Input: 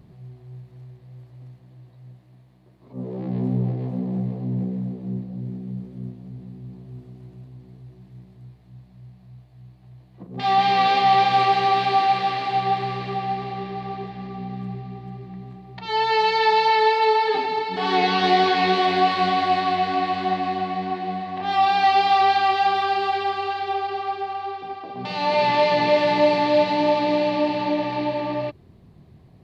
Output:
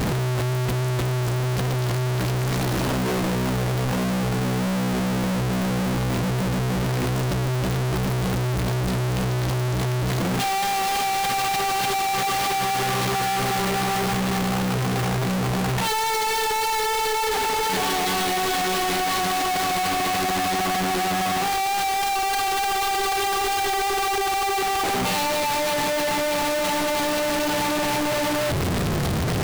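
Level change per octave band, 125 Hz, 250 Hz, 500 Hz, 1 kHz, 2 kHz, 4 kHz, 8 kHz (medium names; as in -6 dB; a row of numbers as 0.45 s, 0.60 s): +8.5 dB, +2.5 dB, -2.0 dB, -3.0 dB, +2.0 dB, +2.0 dB, no reading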